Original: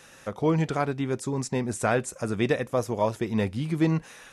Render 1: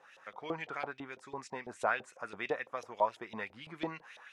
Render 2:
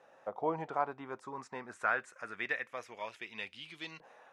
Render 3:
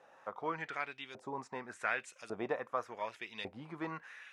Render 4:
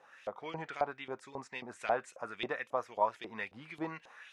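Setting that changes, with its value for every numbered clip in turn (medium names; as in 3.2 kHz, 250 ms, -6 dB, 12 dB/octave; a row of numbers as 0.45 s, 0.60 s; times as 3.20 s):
LFO band-pass, rate: 6 Hz, 0.25 Hz, 0.87 Hz, 3.7 Hz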